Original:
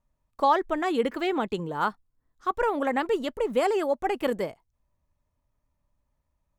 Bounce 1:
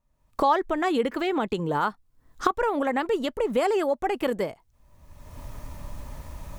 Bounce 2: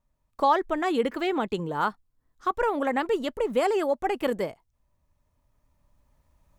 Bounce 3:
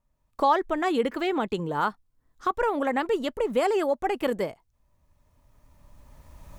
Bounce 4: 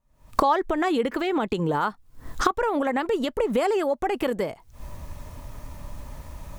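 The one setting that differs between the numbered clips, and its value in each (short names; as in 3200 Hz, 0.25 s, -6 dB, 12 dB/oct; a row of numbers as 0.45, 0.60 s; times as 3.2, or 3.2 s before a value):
recorder AGC, rising by: 37, 5.7, 14, 91 dB/s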